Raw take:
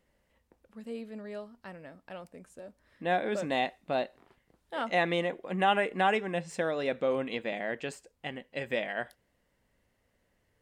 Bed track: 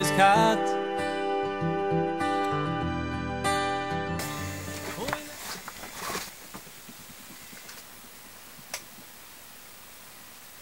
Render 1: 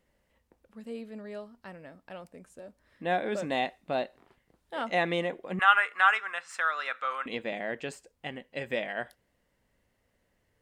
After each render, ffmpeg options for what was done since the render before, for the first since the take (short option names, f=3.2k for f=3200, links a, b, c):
-filter_complex "[0:a]asettb=1/sr,asplit=3[a][b][c];[a]atrim=end=5.594[d];[b]atrim=start=5.59:end=7.26,asetpts=PTS-STARTPTS,afade=t=in:d=0.004:c=qsin,afade=t=out:st=1.666:d=0.004:c=qsin,highpass=f=1.3k:t=q:w=6.6[e];[c]atrim=start=7.256[f];[d][e]acrossfade=d=0.004:c1=hsin:c2=qsin[g];[g][f]acrossfade=d=0.004:c1=qsin:c2=hsin"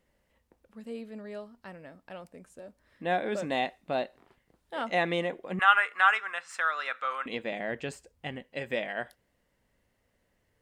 -filter_complex "[0:a]asettb=1/sr,asplit=3[a][b][c];[a]atrim=end=7.594[d];[b]atrim=start=7.59:end=8.44,asetpts=PTS-STARTPTS,afade=t=in:d=0.004:c=qsin,afade=t=out:st=0.846:d=0.004:c=qsin,equalizer=f=71:t=o:w=1.8:g=10[e];[c]atrim=start=8.436[f];[d][e]acrossfade=d=0.004:c1=hsin:c2=qsin[g];[g][f]acrossfade=d=0.004:c1=qsin:c2=hsin"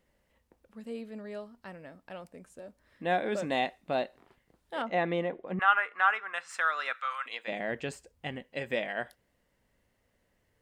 -filter_complex "[0:a]asettb=1/sr,asplit=3[a][b][c];[a]atrim=end=4.824[d];[b]atrim=start=4.82:end=6.34,asetpts=PTS-STARTPTS,afade=t=in:d=0.004:c=qsin,afade=t=out:st=1.516:d=0.004:c=qsin,lowpass=f=1.4k:p=1[e];[c]atrim=start=6.336[f];[d][e]acrossfade=d=0.004:c1=hsin:c2=qsin[g];[g][f]acrossfade=d=0.004:c1=qsin:c2=hsin,asplit=3[h][i][j];[h]afade=t=out:st=6.93:d=0.02[k];[i]highpass=1k,afade=t=in:st=6.93:d=0.02,afade=t=out:st=7.47:d=0.02[l];[j]afade=t=in:st=7.47:d=0.02[m];[k][l][m]amix=inputs=3:normalize=0"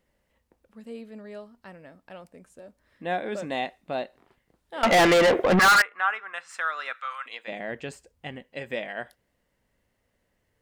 -filter_complex "[0:a]asettb=1/sr,asplit=3[a][b][c];[a]atrim=end=4.834[d];[b]atrim=start=4.83:end=5.82,asetpts=PTS-STARTPTS,afade=t=in:d=0.004:c=qsin,afade=t=out:st=0.986:d=0.004:c=qsin,asplit=2[e][f];[f]highpass=f=720:p=1,volume=36dB,asoftclip=type=tanh:threshold=-10.5dB[g];[e][g]amix=inputs=2:normalize=0,lowpass=f=7.6k:p=1,volume=-6dB[h];[c]atrim=start=5.816[i];[d][h]acrossfade=d=0.004:c1=hsin:c2=qsin[j];[j][i]acrossfade=d=0.004:c1=qsin:c2=hsin"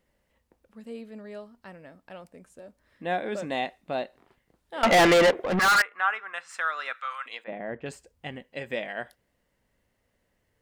-filter_complex "[0:a]asettb=1/sr,asplit=3[a][b][c];[a]atrim=end=7.444[d];[b]atrim=start=7.44:end=7.86,asetpts=PTS-STARTPTS,afade=t=in:d=0.004:c=qsin,afade=t=out:st=0.416:d=0.004:c=qsin,lowpass=1.5k[e];[c]atrim=start=7.856[f];[d][e]acrossfade=d=0.004:c1=hsin:c2=qsin[g];[g][f]acrossfade=d=0.004:c1=qsin:c2=hsin,asplit=2[h][i];[h]atrim=end=5.31,asetpts=PTS-STARTPTS,afade=t=out:st=5.306:d=0.004:c=hsin:silence=0.188365[j];[i]atrim=start=5.31,asetpts=PTS-STARTPTS,afade=t=in:d=0.94:c=qsin:silence=0.188365[k];[j][k]concat=n=2:v=0:a=1"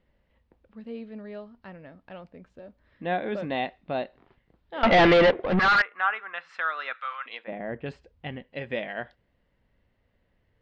-af "lowpass=f=4.1k:w=0.5412,lowpass=f=4.1k:w=1.3066,lowshelf=f=170:g=7.5"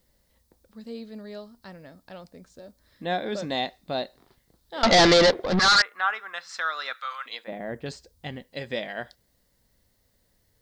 -af "aexciter=amount=12.6:drive=3.8:freq=4.1k"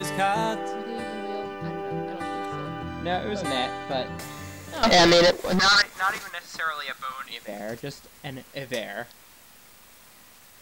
-filter_complex "[1:a]volume=-4.5dB[a];[0:a][a]amix=inputs=2:normalize=0"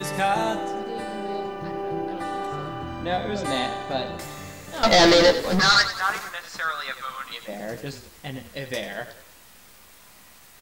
-filter_complex "[0:a]asplit=2[a][b];[b]adelay=15,volume=-7dB[c];[a][c]amix=inputs=2:normalize=0,asplit=2[d][e];[e]asplit=5[f][g][h][i][j];[f]adelay=93,afreqshift=-31,volume=-12dB[k];[g]adelay=186,afreqshift=-62,volume=-18.9dB[l];[h]adelay=279,afreqshift=-93,volume=-25.9dB[m];[i]adelay=372,afreqshift=-124,volume=-32.8dB[n];[j]adelay=465,afreqshift=-155,volume=-39.7dB[o];[k][l][m][n][o]amix=inputs=5:normalize=0[p];[d][p]amix=inputs=2:normalize=0"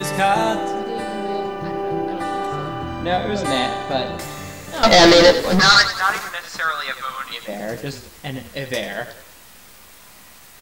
-af "volume=5.5dB,alimiter=limit=-1dB:level=0:latency=1"